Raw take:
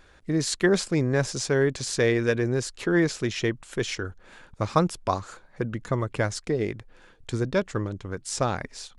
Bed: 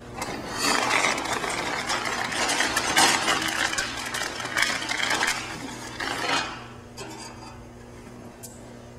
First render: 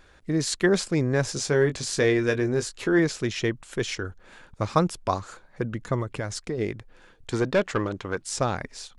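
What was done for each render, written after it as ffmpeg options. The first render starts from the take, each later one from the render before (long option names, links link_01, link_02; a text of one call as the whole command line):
ffmpeg -i in.wav -filter_complex "[0:a]asettb=1/sr,asplit=3[link_01][link_02][link_03];[link_01]atrim=end=1.244[link_04];[link_02]atrim=start=1.24:end=2.99,asetpts=PTS-STARTPTS,afade=type=in:duration=0.004:curve=qsin,afade=type=out:start_time=1.746:duration=0.004:curve=qsin,asplit=2[link_05][link_06];[link_06]adelay=20,volume=-8dB[link_07];[link_05][link_07]amix=inputs=2:normalize=0,atrim=end_sample=77175[link_08];[link_03]atrim=start=2.986[link_09];[link_04][link_08]acrossfade=duration=0.004:curve1=hsin:curve2=qsin[link_10];[link_10][link_09]acrossfade=duration=0.004:curve1=qsin:curve2=hsin,asettb=1/sr,asplit=3[link_11][link_12][link_13];[link_11]atrim=end=6.024[link_14];[link_12]atrim=start=6.02:end=6.58,asetpts=PTS-STARTPTS,afade=type=in:duration=0.004:curve=qsin,afade=type=out:start_time=0.556:duration=0.004:curve=qsin,acompressor=threshold=-25dB:ratio=5:attack=3.2:release=140:knee=1:detection=peak[link_15];[link_13]atrim=start=6.576[link_16];[link_14][link_15]acrossfade=duration=0.004:curve1=hsin:curve2=qsin[link_17];[link_17][link_16]acrossfade=duration=0.004:curve1=qsin:curve2=hsin,asettb=1/sr,asplit=3[link_18][link_19][link_20];[link_18]atrim=end=7.324[link_21];[link_19]atrim=start=7.32:end=8.23,asetpts=PTS-STARTPTS,afade=type=in:duration=0.004:curve=qsin,afade=type=out:start_time=0.906:duration=0.004:curve=qsin,asplit=2[link_22][link_23];[link_23]highpass=frequency=720:poles=1,volume=17dB,asoftclip=type=tanh:threshold=-12.5dB[link_24];[link_22][link_24]amix=inputs=2:normalize=0,lowpass=frequency=2800:poles=1,volume=-6dB[link_25];[link_20]atrim=start=8.226[link_26];[link_21][link_25]acrossfade=duration=0.004:curve1=hsin:curve2=qsin[link_27];[link_27][link_26]acrossfade=duration=0.004:curve1=qsin:curve2=hsin" out.wav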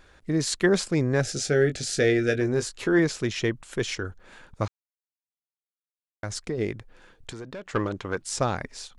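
ffmpeg -i in.wav -filter_complex "[0:a]asettb=1/sr,asplit=3[link_01][link_02][link_03];[link_01]atrim=end=1.204[link_04];[link_02]atrim=start=1.2:end=2.41,asetpts=PTS-STARTPTS,afade=type=in:duration=0.004:curve=qsin,afade=type=out:start_time=1.206:duration=0.004:curve=qsin,asuperstop=centerf=1000:order=8:qfactor=2.3[link_05];[link_03]atrim=start=2.406[link_06];[link_04][link_05]acrossfade=duration=0.004:curve1=hsin:curve2=qsin[link_07];[link_07][link_06]acrossfade=duration=0.004:curve1=qsin:curve2=hsin,asettb=1/sr,asplit=3[link_08][link_09][link_10];[link_08]atrim=end=7.304[link_11];[link_09]atrim=start=7.3:end=7.74,asetpts=PTS-STARTPTS,afade=type=in:duration=0.004:curve=qsin,afade=type=out:start_time=0.436:duration=0.004:curve=qsin,acompressor=threshold=-38dB:ratio=4:attack=3.2:release=140:knee=1:detection=peak[link_12];[link_10]atrim=start=7.736[link_13];[link_11][link_12]acrossfade=duration=0.004:curve1=hsin:curve2=qsin[link_14];[link_14][link_13]acrossfade=duration=0.004:curve1=qsin:curve2=hsin,asplit=3[link_15][link_16][link_17];[link_15]atrim=end=4.68,asetpts=PTS-STARTPTS,afade=type=out:start_time=4.676:duration=0.004:curve=hsin[link_18];[link_16]atrim=start=4.68:end=6.23,asetpts=PTS-STARTPTS,volume=0[link_19];[link_17]atrim=start=6.23,asetpts=PTS-STARTPTS,afade=type=in:duration=0.004:curve=hsin[link_20];[link_18][link_19][link_20]concat=n=3:v=0:a=1" out.wav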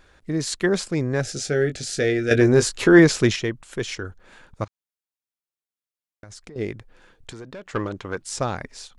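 ffmpeg -i in.wav -filter_complex "[0:a]asettb=1/sr,asplit=3[link_01][link_02][link_03];[link_01]atrim=end=4.644[link_04];[link_02]atrim=start=4.64:end=6.56,asetpts=PTS-STARTPTS,afade=type=in:duration=0.004:curve=qsin,afade=type=out:start_time=1.916:duration=0.004:curve=qsin,acompressor=threshold=-38dB:ratio=12:attack=3.2:release=140:knee=1:detection=peak[link_05];[link_03]atrim=start=6.556[link_06];[link_04][link_05]acrossfade=duration=0.004:curve1=hsin:curve2=qsin[link_07];[link_07][link_06]acrossfade=duration=0.004:curve1=qsin:curve2=hsin,asplit=3[link_08][link_09][link_10];[link_08]atrim=end=2.312[link_11];[link_09]atrim=start=2.308:end=3.362,asetpts=PTS-STARTPTS,volume=9dB[link_12];[link_10]atrim=start=3.358[link_13];[link_11][link_12]acrossfade=duration=0.004:curve1=hsin:curve2=hsin[link_14];[link_14][link_13]acrossfade=duration=0.004:curve1=hsin:curve2=hsin" out.wav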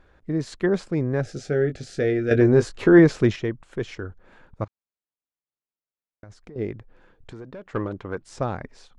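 ffmpeg -i in.wav -af "lowpass=frequency=1100:poles=1" out.wav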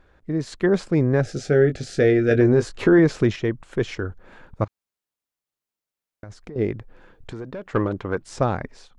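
ffmpeg -i in.wav -af "alimiter=limit=-12.5dB:level=0:latency=1:release=406,dynaudnorm=framelen=430:gausssize=3:maxgain=5.5dB" out.wav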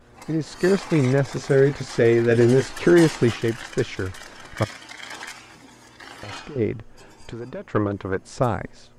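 ffmpeg -i in.wav -i bed.wav -filter_complex "[1:a]volume=-12dB[link_01];[0:a][link_01]amix=inputs=2:normalize=0" out.wav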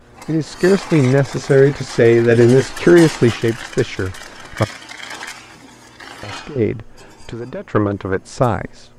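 ffmpeg -i in.wav -af "volume=6dB,alimiter=limit=-1dB:level=0:latency=1" out.wav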